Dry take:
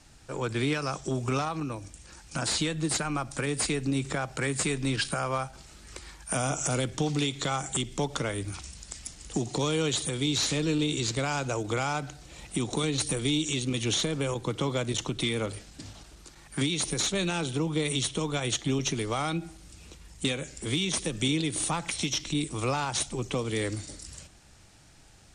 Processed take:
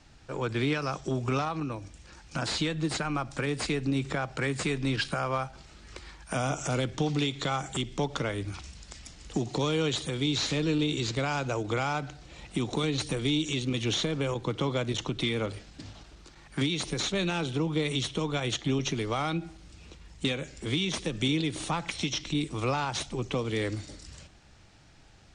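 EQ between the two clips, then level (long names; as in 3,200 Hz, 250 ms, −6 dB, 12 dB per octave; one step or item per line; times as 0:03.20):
low-pass filter 5,000 Hz 12 dB per octave
0.0 dB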